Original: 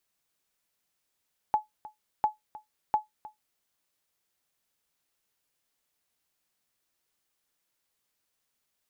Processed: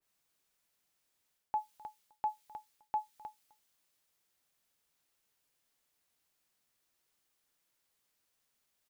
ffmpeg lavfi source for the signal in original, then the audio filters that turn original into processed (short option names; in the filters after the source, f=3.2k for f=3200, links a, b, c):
-f lavfi -i "aevalsrc='0.168*(sin(2*PI*854*mod(t,0.7))*exp(-6.91*mod(t,0.7)/0.15)+0.112*sin(2*PI*854*max(mod(t,0.7)-0.31,0))*exp(-6.91*max(mod(t,0.7)-0.31,0)/0.15))':d=2.1:s=44100"
-af "areverse,acompressor=threshold=-32dB:ratio=6,areverse,aecho=1:1:257:0.0708,adynamicequalizer=threshold=0.002:dfrequency=2000:dqfactor=0.7:tfrequency=2000:tqfactor=0.7:attack=5:release=100:ratio=0.375:range=4:mode=boostabove:tftype=highshelf"